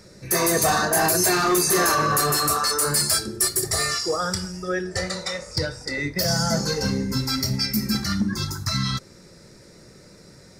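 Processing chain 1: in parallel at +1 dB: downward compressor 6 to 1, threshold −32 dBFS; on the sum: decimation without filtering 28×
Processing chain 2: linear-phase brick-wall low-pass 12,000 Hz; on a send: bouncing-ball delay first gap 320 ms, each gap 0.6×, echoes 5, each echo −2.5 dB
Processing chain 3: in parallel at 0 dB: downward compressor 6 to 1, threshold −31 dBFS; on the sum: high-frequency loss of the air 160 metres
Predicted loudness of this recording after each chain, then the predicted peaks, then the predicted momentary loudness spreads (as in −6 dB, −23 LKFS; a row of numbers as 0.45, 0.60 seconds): −21.5, −19.0, −23.0 LKFS; −10.0, −5.5, −12.0 dBFS; 7, 9, 7 LU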